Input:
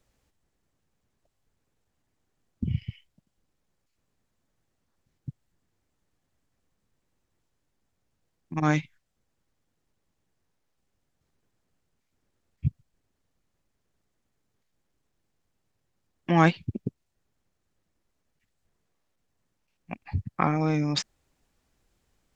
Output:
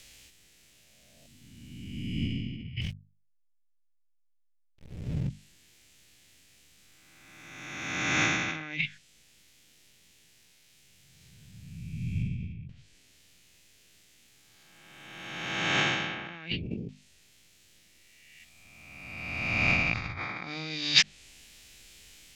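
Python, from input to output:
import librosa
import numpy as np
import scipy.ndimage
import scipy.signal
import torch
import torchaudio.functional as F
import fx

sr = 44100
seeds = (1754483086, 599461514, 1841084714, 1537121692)

y = fx.spec_swells(x, sr, rise_s=1.83)
y = fx.env_lowpass_down(y, sr, base_hz=2500.0, full_db=-20.0)
y = fx.backlash(y, sr, play_db=-35.5, at=(2.81, 5.29))
y = fx.over_compress(y, sr, threshold_db=-35.0, ratio=-1.0)
y = fx.high_shelf_res(y, sr, hz=1700.0, db=13.5, q=1.5)
y = fx.hum_notches(y, sr, base_hz=50, count=5)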